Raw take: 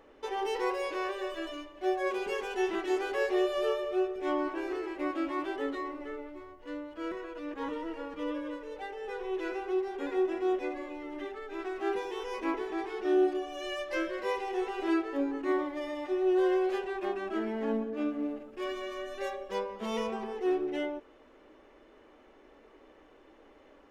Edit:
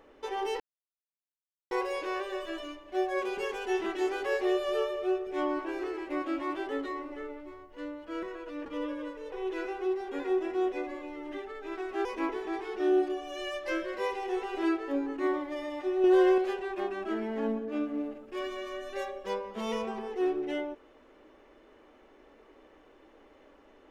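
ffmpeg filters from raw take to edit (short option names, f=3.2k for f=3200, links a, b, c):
-filter_complex "[0:a]asplit=7[a][b][c][d][e][f][g];[a]atrim=end=0.6,asetpts=PTS-STARTPTS,afade=t=out:st=0.596:d=0.004:c=hsin,apad=pad_dur=1.11[h];[b]atrim=start=0.6:end=7.552,asetpts=PTS-STARTPTS,afade=t=in:d=0.004:c=hsin[i];[c]atrim=start=8.118:end=8.782[j];[d]atrim=start=9.188:end=11.922[k];[e]atrim=start=12.298:end=16.292[l];[f]atrim=start=16.288:end=16.632,asetpts=PTS-STARTPTS,volume=4.5dB[m];[g]atrim=start=16.628[n];[h][i]concat=n=2:v=0:a=1[o];[o][j]acrossfade=d=0.004:c1=hsin:c2=hsin[p];[p][k]acrossfade=d=0.004:c1=hsin:c2=hsin[q];[q][l]acrossfade=d=0.004:c1=hsin:c2=hsin[r];[r][m]acrossfade=d=0.004:c1=hsin:c2=hsin[s];[s][n]acrossfade=d=0.004:c1=hsin:c2=hsin"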